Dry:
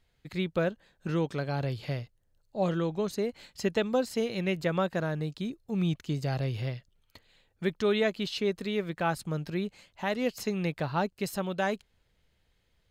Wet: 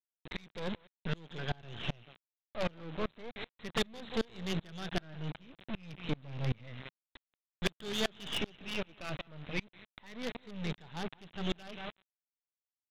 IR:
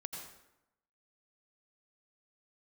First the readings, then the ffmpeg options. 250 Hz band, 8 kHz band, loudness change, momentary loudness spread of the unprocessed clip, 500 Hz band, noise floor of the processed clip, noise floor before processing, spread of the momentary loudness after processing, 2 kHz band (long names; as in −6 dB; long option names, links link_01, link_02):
−9.0 dB, −5.0 dB, −8.0 dB, 7 LU, −11.5 dB, below −85 dBFS, −72 dBFS, 10 LU, −5.0 dB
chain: -filter_complex "[0:a]afftfilt=real='re*pow(10,13/40*sin(2*PI*(0.95*log(max(b,1)*sr/1024/100)/log(2)-(-0.31)*(pts-256)/sr)))':imag='im*pow(10,13/40*sin(2*PI*(0.95*log(max(b,1)*sr/1024/100)/log(2)-(-0.31)*(pts-256)/sr)))':win_size=1024:overlap=0.75,acrossover=split=2900[link_01][link_02];[link_01]aeval=exprs='(mod(5.01*val(0)+1,2)-1)/5.01':channel_layout=same[link_03];[link_02]dynaudnorm=framelen=180:gausssize=3:maxgain=14dB[link_04];[link_03][link_04]amix=inputs=2:normalize=0,aecho=1:1:181|362|543:0.168|0.0436|0.0113,aresample=8000,acrusher=bits=4:dc=4:mix=0:aa=0.000001,aresample=44100,adynamicequalizer=threshold=0.00891:dfrequency=170:dqfactor=1.2:tfrequency=170:tqfactor=1.2:attack=5:release=100:ratio=0.375:range=2.5:mode=boostabove:tftype=bell,alimiter=limit=-15dB:level=0:latency=1:release=28,asoftclip=type=tanh:threshold=-27dB,aeval=exprs='val(0)*pow(10,-30*if(lt(mod(-2.6*n/s,1),2*abs(-2.6)/1000),1-mod(-2.6*n/s,1)/(2*abs(-2.6)/1000),(mod(-2.6*n/s,1)-2*abs(-2.6)/1000)/(1-2*abs(-2.6)/1000))/20)':channel_layout=same,volume=5dB"